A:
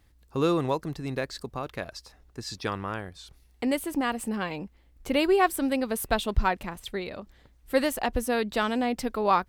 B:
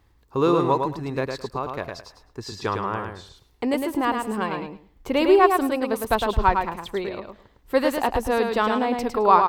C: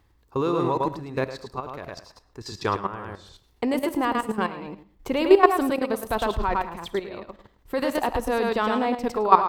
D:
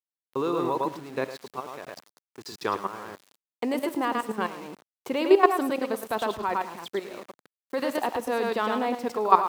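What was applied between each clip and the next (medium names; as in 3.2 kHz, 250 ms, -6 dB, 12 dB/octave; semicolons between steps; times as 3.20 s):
fifteen-band graphic EQ 100 Hz +4 dB, 400 Hz +6 dB, 1 kHz +9 dB, 10 kHz -6 dB; on a send: feedback delay 107 ms, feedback 18%, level -5 dB
level held to a coarse grid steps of 13 dB; reverberation RT60 0.50 s, pre-delay 10 ms, DRR 17 dB; trim +3 dB
small samples zeroed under -40 dBFS; high-pass 200 Hz 12 dB/octave; trim -2.5 dB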